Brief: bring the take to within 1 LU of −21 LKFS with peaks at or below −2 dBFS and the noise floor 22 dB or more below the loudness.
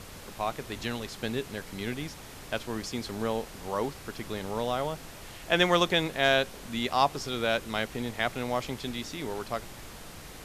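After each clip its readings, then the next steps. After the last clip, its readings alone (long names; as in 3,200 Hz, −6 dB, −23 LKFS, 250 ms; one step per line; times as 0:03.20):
background noise floor −46 dBFS; target noise floor −53 dBFS; integrated loudness −30.5 LKFS; sample peak −10.5 dBFS; target loudness −21.0 LKFS
→ noise reduction from a noise print 7 dB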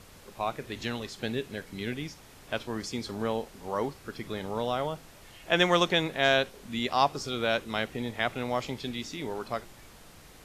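background noise floor −52 dBFS; target noise floor −53 dBFS
→ noise reduction from a noise print 6 dB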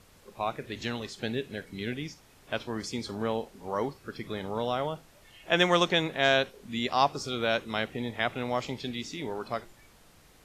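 background noise floor −58 dBFS; integrated loudness −30.5 LKFS; sample peak −10.5 dBFS; target loudness −21.0 LKFS
→ level +9.5 dB
brickwall limiter −2 dBFS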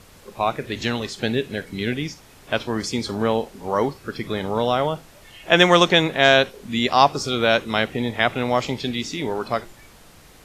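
integrated loudness −21.0 LKFS; sample peak −2.0 dBFS; background noise floor −49 dBFS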